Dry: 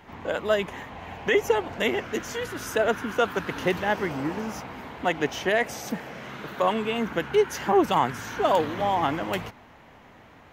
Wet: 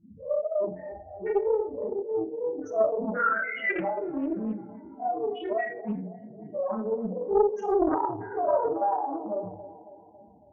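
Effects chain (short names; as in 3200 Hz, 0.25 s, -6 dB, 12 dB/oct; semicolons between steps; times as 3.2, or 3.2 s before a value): spectral dilation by 0.12 s; 3.17–3.7 tilt shelf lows -9.5 dB, about 680 Hz; notches 60/120/180/240/300/360/420/480/540 Hz; loudest bins only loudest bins 2; chorus voices 6, 0.25 Hz, delay 30 ms, depth 3.4 ms; band-limited delay 0.276 s, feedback 56%, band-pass 450 Hz, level -14 dB; on a send at -4.5 dB: reverb RT60 0.50 s, pre-delay 5 ms; on the sum: Doppler distortion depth 0.46 ms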